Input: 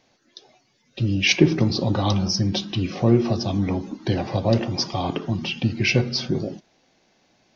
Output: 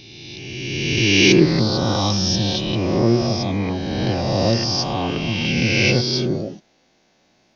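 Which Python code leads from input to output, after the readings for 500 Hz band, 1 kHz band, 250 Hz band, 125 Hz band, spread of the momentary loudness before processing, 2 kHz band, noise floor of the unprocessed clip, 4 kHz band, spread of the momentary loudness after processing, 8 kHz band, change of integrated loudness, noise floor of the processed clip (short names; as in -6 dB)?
+4.5 dB, +4.0 dB, +3.5 dB, +2.0 dB, 8 LU, +6.0 dB, -64 dBFS, +6.0 dB, 12 LU, n/a, +4.0 dB, -61 dBFS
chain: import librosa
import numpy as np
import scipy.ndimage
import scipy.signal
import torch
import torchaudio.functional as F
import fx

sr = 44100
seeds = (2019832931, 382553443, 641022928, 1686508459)

y = fx.spec_swells(x, sr, rise_s=2.11)
y = F.gain(torch.from_numpy(y), -1.5).numpy()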